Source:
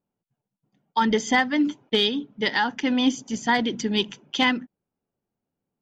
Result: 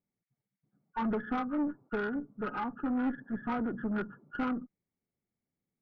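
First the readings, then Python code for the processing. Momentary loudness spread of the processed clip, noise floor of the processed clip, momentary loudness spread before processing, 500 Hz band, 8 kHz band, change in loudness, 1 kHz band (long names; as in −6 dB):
6 LU, below −85 dBFS, 6 LU, −10.5 dB, can't be measured, −11.0 dB, −11.5 dB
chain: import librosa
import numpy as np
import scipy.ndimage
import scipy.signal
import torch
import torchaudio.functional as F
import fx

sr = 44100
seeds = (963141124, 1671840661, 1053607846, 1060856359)

y = fx.freq_compress(x, sr, knee_hz=1100.0, ratio=4.0)
y = fx.curve_eq(y, sr, hz=(180.0, 890.0, 1800.0), db=(0, -7, -14))
y = fx.tube_stage(y, sr, drive_db=24.0, bias=0.45)
y = F.gain(torch.from_numpy(y), -2.5).numpy()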